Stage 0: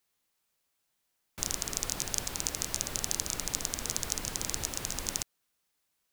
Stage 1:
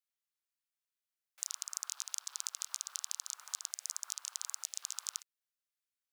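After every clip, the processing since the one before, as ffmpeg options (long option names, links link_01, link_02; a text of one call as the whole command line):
ffmpeg -i in.wav -af "afwtdn=0.01,acompressor=threshold=-34dB:ratio=6,highpass=frequency=1200:width=0.5412,highpass=frequency=1200:width=1.3066,volume=1dB" out.wav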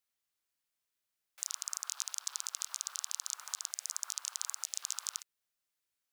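ffmpeg -i in.wav -af "alimiter=limit=-18dB:level=0:latency=1:release=26,volume=5dB" out.wav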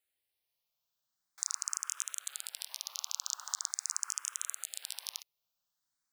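ffmpeg -i in.wav -filter_complex "[0:a]asplit=2[link_01][link_02];[link_02]afreqshift=0.43[link_03];[link_01][link_03]amix=inputs=2:normalize=1,volume=4dB" out.wav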